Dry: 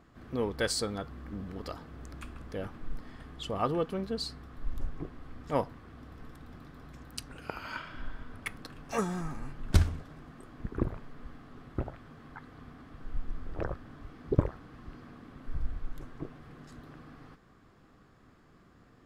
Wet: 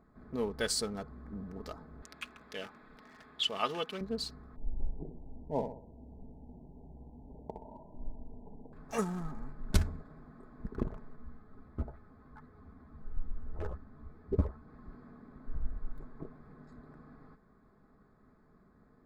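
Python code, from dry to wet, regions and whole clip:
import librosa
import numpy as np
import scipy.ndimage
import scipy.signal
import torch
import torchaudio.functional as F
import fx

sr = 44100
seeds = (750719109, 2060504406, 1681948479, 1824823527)

y = fx.chain(x, sr, fx.highpass(hz=440.0, slope=6),
    fx.peak_eq(hz=3000.0, db=13.5, octaves=1.5), at=(2.02, 4.01))
y = fx.chain(y, sr, fx.brickwall_lowpass(high_hz=1000.0),
    fx.room_flutter(wall_m=10.7, rt60_s=0.53), at=(4.56, 8.73))
y = fx.chain(y, sr, fx.peak_eq(hz=70.0, db=9.0, octaves=1.1),
    fx.ensemble(), at=(11.16, 14.68))
y = fx.wiener(y, sr, points=15)
y = fx.high_shelf(y, sr, hz=4600.0, db=5.5)
y = y + 0.42 * np.pad(y, (int(4.7 * sr / 1000.0), 0))[:len(y)]
y = y * 10.0 ** (-4.0 / 20.0)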